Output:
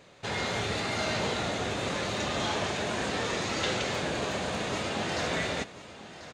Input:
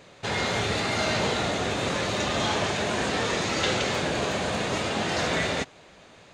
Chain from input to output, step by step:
single-tap delay 1,041 ms −14.5 dB
level −4.5 dB

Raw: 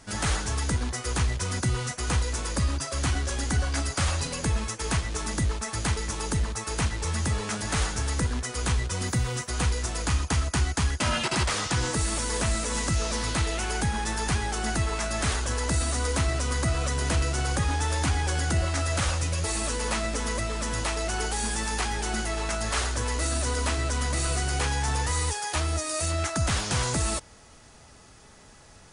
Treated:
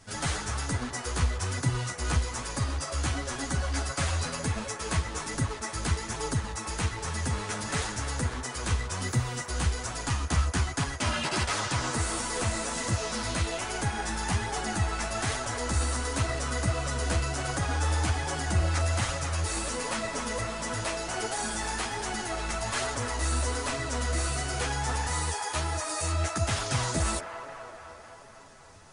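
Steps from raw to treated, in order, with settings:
delay with a band-pass on its return 258 ms, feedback 67%, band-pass 960 Hz, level −4.5 dB
multi-voice chorus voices 2, 1.2 Hz, delay 10 ms, depth 3 ms

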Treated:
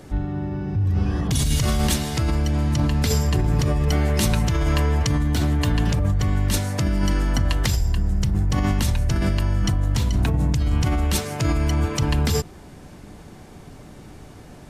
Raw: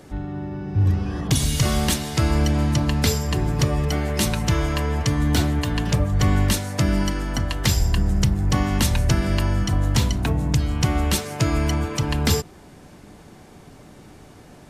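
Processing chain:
low-shelf EQ 110 Hz +6.5 dB
in parallel at +3 dB: compressor whose output falls as the input rises −19 dBFS, ratio −0.5
on the sum: level −8.5 dB

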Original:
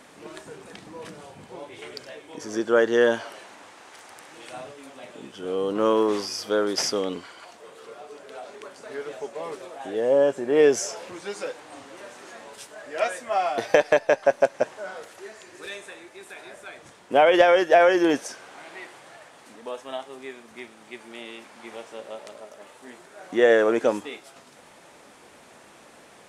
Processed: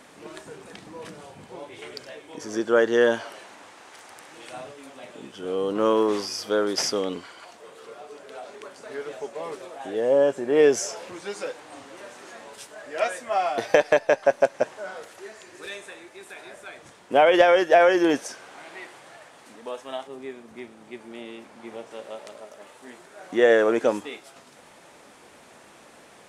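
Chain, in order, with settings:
0:20.07–0:21.91: tilt shelving filter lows +5 dB, about 700 Hz

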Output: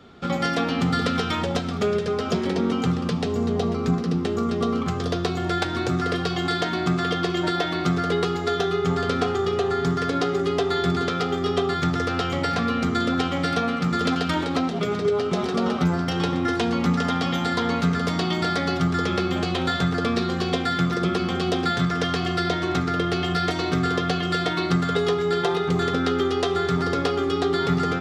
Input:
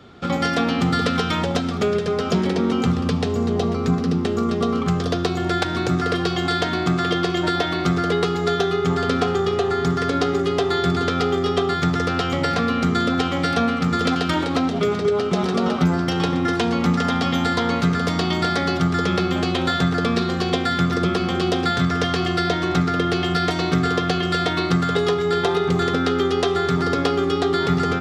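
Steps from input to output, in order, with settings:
flanger 0.28 Hz, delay 4.2 ms, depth 5.9 ms, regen −68%
level +1.5 dB

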